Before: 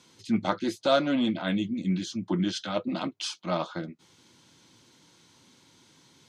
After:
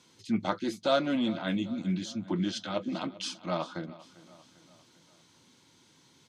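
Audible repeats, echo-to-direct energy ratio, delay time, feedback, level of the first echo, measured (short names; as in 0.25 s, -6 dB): 3, -17.5 dB, 0.397 s, 51%, -19.0 dB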